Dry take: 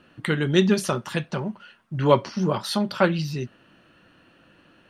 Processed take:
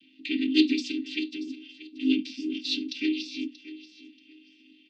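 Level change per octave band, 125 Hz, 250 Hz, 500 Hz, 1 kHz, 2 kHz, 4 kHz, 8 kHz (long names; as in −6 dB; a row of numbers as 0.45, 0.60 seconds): below −30 dB, −1.0 dB, −16.0 dB, below −40 dB, −5.5 dB, +1.0 dB, −10.5 dB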